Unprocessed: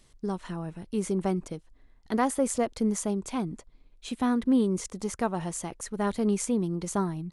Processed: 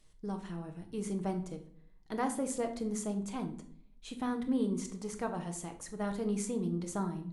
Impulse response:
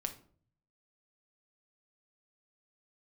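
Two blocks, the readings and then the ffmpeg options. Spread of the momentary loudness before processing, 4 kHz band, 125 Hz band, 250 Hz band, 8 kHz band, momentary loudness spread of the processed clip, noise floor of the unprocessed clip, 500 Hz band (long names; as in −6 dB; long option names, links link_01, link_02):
12 LU, −7.5 dB, −5.5 dB, −7.0 dB, −7.5 dB, 10 LU, −59 dBFS, −7.5 dB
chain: -filter_complex "[1:a]atrim=start_sample=2205,asetrate=36162,aresample=44100[link_01];[0:a][link_01]afir=irnorm=-1:irlink=0,volume=-8dB"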